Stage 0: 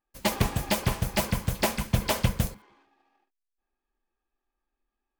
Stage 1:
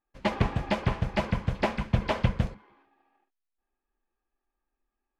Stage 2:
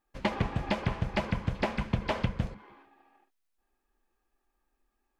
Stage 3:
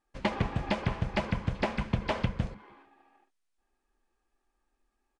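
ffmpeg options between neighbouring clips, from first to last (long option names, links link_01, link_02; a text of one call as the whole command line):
ffmpeg -i in.wav -af "lowpass=2600" out.wav
ffmpeg -i in.wav -af "acompressor=threshold=-33dB:ratio=4,volume=6dB" out.wav
ffmpeg -i in.wav -af "aresample=22050,aresample=44100" out.wav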